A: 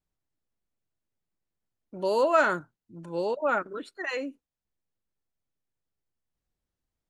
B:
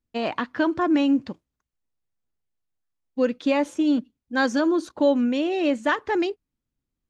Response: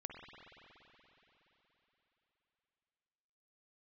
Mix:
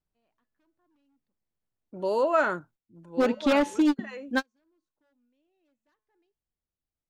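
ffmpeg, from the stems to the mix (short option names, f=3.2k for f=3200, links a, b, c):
-filter_complex "[0:a]highshelf=f=2.4k:g=-7,volume=-0.5dB,afade=t=out:st=2.47:d=0.37:silence=0.446684,asplit=2[a][b];[1:a]bandreject=f=215.1:t=h:w=4,bandreject=f=430.2:t=h:w=4,bandreject=f=645.3:t=h:w=4,bandreject=f=860.4:t=h:w=4,bandreject=f=1.0755k:t=h:w=4,bandreject=f=1.2906k:t=h:w=4,bandreject=f=1.5057k:t=h:w=4,bandreject=f=1.7208k:t=h:w=4,bandreject=f=1.9359k:t=h:w=4,bandreject=f=2.151k:t=h:w=4,bandreject=f=2.3661k:t=h:w=4,bandreject=f=2.5812k:t=h:w=4,bandreject=f=2.7963k:t=h:w=4,bandreject=f=3.0114k:t=h:w=4,bandreject=f=3.2265k:t=h:w=4,bandreject=f=3.4416k:t=h:w=4,bandreject=f=3.6567k:t=h:w=4,bandreject=f=3.8718k:t=h:w=4,bandreject=f=4.0869k:t=h:w=4,bandreject=f=4.302k:t=h:w=4,bandreject=f=4.5171k:t=h:w=4,bandreject=f=4.7322k:t=h:w=4,bandreject=f=4.9473k:t=h:w=4,bandreject=f=5.1624k:t=h:w=4,bandreject=f=5.3775k:t=h:w=4,bandreject=f=5.5926k:t=h:w=4,bandreject=f=5.8077k:t=h:w=4,bandreject=f=6.0228k:t=h:w=4,bandreject=f=6.2379k:t=h:w=4,bandreject=f=6.453k:t=h:w=4,bandreject=f=6.6681k:t=h:w=4,bandreject=f=6.8832k:t=h:w=4,bandreject=f=7.0983k:t=h:w=4,bandreject=f=7.3134k:t=h:w=4,bandreject=f=7.5285k:t=h:w=4,aeval=exprs='0.15*(abs(mod(val(0)/0.15+3,4)-2)-1)':c=same,volume=0.5dB[c];[b]apad=whole_len=312723[d];[c][d]sidechaingate=range=-51dB:threshold=-54dB:ratio=16:detection=peak[e];[a][e]amix=inputs=2:normalize=0"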